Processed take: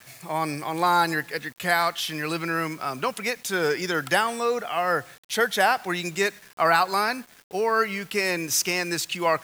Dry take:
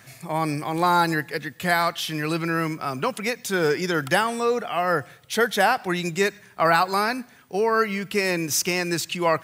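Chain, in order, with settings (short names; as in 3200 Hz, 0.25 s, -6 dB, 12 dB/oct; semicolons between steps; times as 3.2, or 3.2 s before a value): gate with hold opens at -42 dBFS; low shelf 330 Hz -7.5 dB; requantised 8-bit, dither none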